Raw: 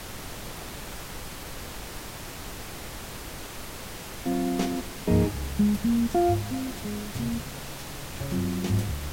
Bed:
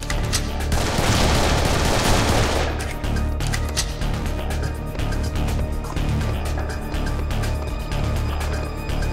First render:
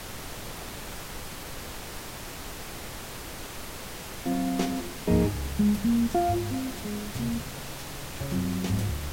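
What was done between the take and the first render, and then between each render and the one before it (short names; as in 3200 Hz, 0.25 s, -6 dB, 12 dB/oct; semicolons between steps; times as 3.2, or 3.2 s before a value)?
de-hum 50 Hz, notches 7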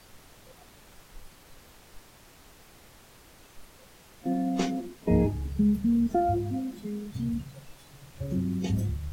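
noise print and reduce 15 dB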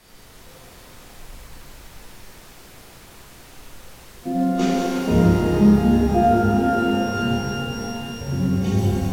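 shimmer reverb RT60 3.6 s, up +12 st, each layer -8 dB, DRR -8 dB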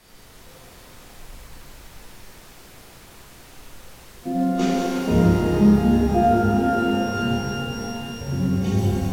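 gain -1 dB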